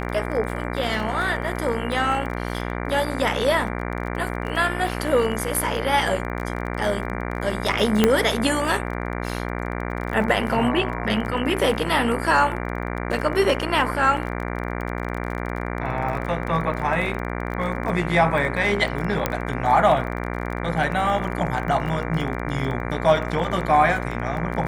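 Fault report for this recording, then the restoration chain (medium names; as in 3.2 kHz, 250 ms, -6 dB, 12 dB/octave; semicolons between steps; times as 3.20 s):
buzz 60 Hz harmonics 39 -28 dBFS
crackle 26 per s -29 dBFS
8.04 s: pop -2 dBFS
19.26 s: pop -6 dBFS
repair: de-click; de-hum 60 Hz, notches 39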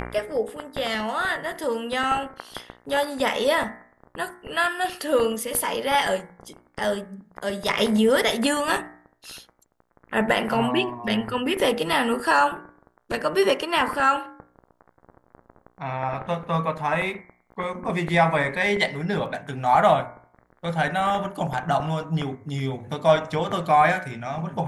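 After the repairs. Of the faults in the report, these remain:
19.26 s: pop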